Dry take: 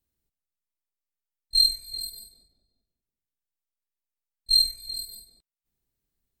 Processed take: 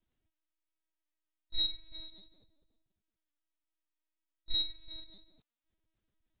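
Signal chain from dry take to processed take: LPC vocoder at 8 kHz pitch kept; gain +1.5 dB

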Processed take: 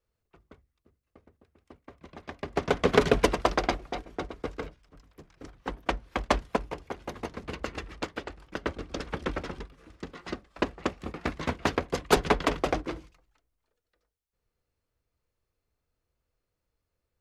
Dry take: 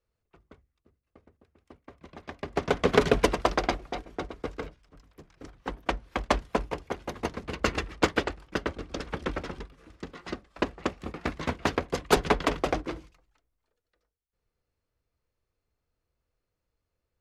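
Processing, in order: 6.56–8.64 compressor 8:1, threshold -31 dBFS, peak gain reduction 14.5 dB

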